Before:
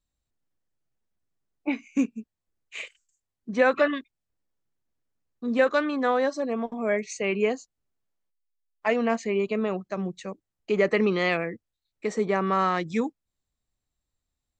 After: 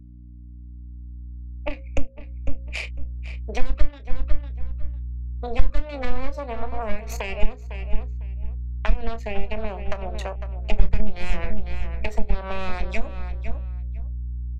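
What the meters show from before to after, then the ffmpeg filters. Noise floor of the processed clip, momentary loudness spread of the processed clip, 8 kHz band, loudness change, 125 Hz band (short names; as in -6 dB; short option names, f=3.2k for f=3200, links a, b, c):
-40 dBFS, 7 LU, -3.0 dB, -5.0 dB, +10.5 dB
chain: -filter_complex "[0:a]aeval=exprs='0.376*(cos(1*acos(clip(val(0)/0.376,-1,1)))-cos(1*PI/2))+0.15*(cos(6*acos(clip(val(0)/0.376,-1,1)))-cos(6*PI/2))':c=same,equalizer=f=630:t=o:w=0.33:g=8,equalizer=f=2.5k:t=o:w=0.33:g=4,equalizer=f=6.3k:t=o:w=0.33:g=-4,acrossover=split=270[a][b];[a]acrusher=bits=2:mix=0:aa=0.5[c];[c][b]amix=inputs=2:normalize=0,bandreject=f=60:t=h:w=6,bandreject=f=120:t=h:w=6,bandreject=f=180:t=h:w=6,bandreject=f=240:t=h:w=6,bandreject=f=300:t=h:w=6,bandreject=f=360:t=h:w=6,bandreject=f=420:t=h:w=6,bandreject=f=480:t=h:w=6,bandreject=f=540:t=h:w=6,anlmdn=0.158,acrossover=split=250[d][e];[e]acompressor=threshold=-29dB:ratio=10[f];[d][f]amix=inputs=2:normalize=0,asplit=2[g][h];[h]adelay=28,volume=-13dB[i];[g][i]amix=inputs=2:normalize=0,asplit=2[j][k];[k]adelay=502,lowpass=f=3.9k:p=1,volume=-14dB,asplit=2[l][m];[m]adelay=502,lowpass=f=3.9k:p=1,volume=0.18[n];[l][n]amix=inputs=2:normalize=0[o];[j][o]amix=inputs=2:normalize=0,aeval=exprs='val(0)+0.00355*(sin(2*PI*60*n/s)+sin(2*PI*2*60*n/s)/2+sin(2*PI*3*60*n/s)/3+sin(2*PI*4*60*n/s)/4+sin(2*PI*5*60*n/s)/5)':c=same,acompressor=threshold=-33dB:ratio=6,asubboost=boost=11:cutoff=75,volume=6.5dB"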